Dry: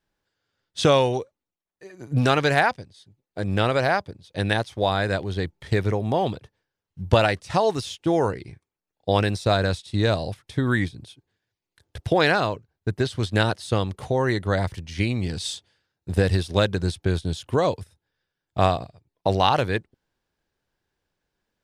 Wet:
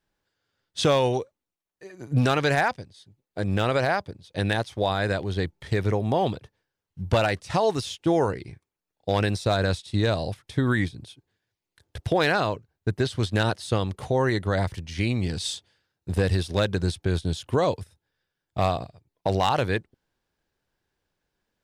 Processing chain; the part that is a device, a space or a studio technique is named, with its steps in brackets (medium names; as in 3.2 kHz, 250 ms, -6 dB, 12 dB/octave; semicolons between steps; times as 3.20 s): clipper into limiter (hard clipper -10 dBFS, distortion -22 dB; peak limiter -13 dBFS, peak gain reduction 3 dB)